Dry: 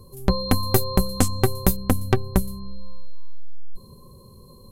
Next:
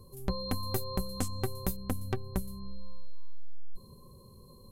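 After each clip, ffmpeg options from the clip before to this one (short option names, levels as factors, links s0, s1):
-af "alimiter=limit=0.316:level=0:latency=1:release=288,volume=0.473"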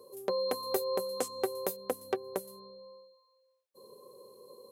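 -af "highpass=f=470:t=q:w=3.8"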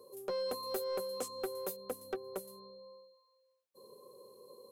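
-af "asoftclip=type=tanh:threshold=0.0422,volume=0.75"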